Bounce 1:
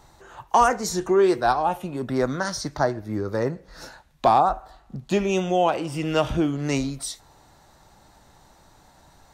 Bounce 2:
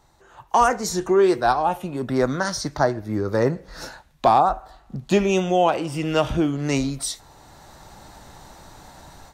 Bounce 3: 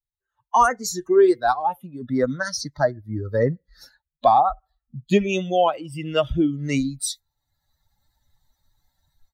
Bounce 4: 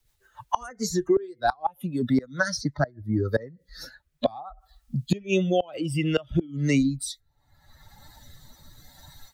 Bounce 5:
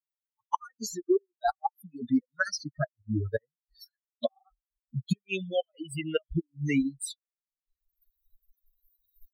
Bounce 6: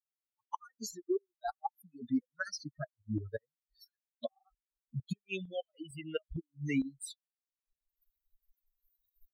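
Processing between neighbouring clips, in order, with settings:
AGC gain up to 15.5 dB; gain -6 dB
per-bin expansion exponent 2; gain +3.5 dB
rotary speaker horn 7 Hz, later 0.65 Hz, at 2.44; flipped gate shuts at -14 dBFS, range -25 dB; three-band squash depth 70%; gain +4.5 dB
per-bin expansion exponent 3
tremolo saw up 2.2 Hz, depth 60%; gain -5 dB

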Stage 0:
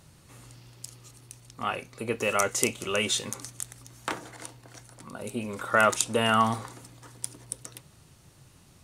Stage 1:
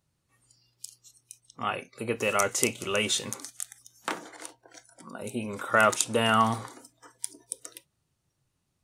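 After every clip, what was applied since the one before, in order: spectral noise reduction 21 dB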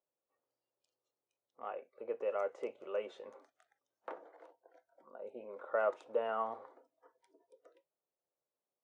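ladder band-pass 610 Hz, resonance 50%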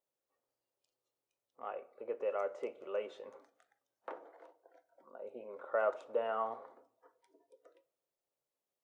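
reverb RT60 0.70 s, pre-delay 7 ms, DRR 14 dB

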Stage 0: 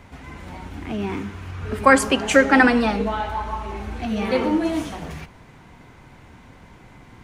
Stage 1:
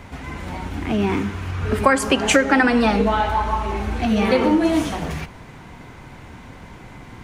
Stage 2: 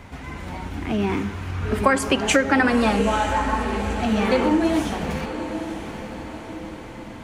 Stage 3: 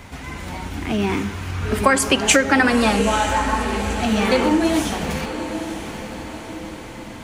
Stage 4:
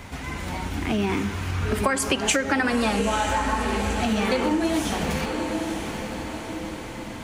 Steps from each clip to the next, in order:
compressor 6:1, threshold -19 dBFS, peak gain reduction 11 dB; gain +6.5 dB
diffused feedback echo 0.926 s, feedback 53%, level -10 dB; gain -2.5 dB
high shelf 3300 Hz +8.5 dB; gain +1.5 dB
compressor 3:1, threshold -21 dBFS, peak gain reduction 8.5 dB

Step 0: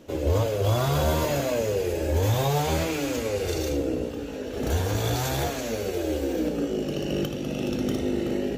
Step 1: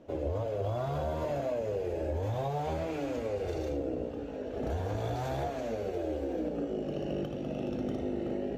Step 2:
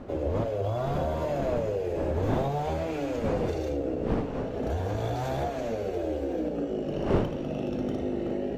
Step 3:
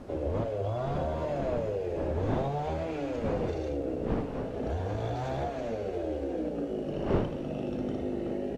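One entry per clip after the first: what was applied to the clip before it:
LPF 1500 Hz 6 dB/oct; bell 670 Hz +7 dB 0.58 oct; compressor, threshold -23 dBFS, peak gain reduction 6.5 dB; gain -6 dB
wind noise 420 Hz -39 dBFS; gain +3.5 dB
in parallel at -9.5 dB: requantised 8-bit, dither triangular; on the sum: air absorption 65 m; downsampling 32000 Hz; gain -5 dB

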